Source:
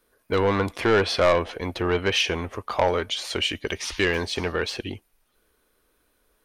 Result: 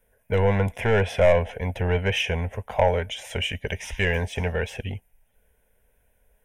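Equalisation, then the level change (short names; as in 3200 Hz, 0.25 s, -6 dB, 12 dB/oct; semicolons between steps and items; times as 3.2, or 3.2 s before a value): low shelf 460 Hz +8.5 dB; fixed phaser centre 1200 Hz, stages 6; 0.0 dB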